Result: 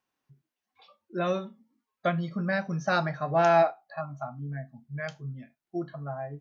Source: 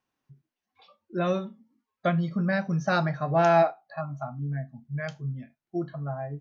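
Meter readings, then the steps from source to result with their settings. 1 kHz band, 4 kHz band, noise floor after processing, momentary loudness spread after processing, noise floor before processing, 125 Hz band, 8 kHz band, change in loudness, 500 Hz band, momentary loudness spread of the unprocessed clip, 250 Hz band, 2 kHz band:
-0.5 dB, 0.0 dB, under -85 dBFS, 17 LU, under -85 dBFS, -4.5 dB, n/a, -1.5 dB, -1.0 dB, 14 LU, -4.0 dB, 0.0 dB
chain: low shelf 250 Hz -6.5 dB

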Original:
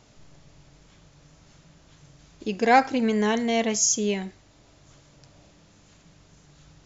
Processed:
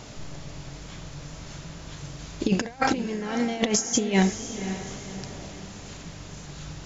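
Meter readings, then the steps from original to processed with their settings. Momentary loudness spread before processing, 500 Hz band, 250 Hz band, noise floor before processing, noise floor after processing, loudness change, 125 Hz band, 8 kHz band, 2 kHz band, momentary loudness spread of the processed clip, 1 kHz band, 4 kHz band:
14 LU, -3.5 dB, +1.0 dB, -57 dBFS, -42 dBFS, -4.0 dB, +8.0 dB, n/a, -2.5 dB, 18 LU, -6.5 dB, +0.5 dB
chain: negative-ratio compressor -30 dBFS, ratio -0.5; diffused feedback echo 0.536 s, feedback 41%, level -10.5 dB; gain +6 dB

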